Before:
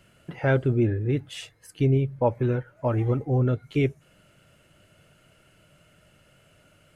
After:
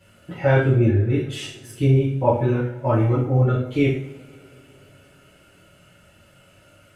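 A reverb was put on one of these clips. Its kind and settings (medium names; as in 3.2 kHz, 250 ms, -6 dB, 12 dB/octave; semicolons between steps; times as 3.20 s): two-slope reverb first 0.52 s, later 3.6 s, from -27 dB, DRR -10 dB; trim -4.5 dB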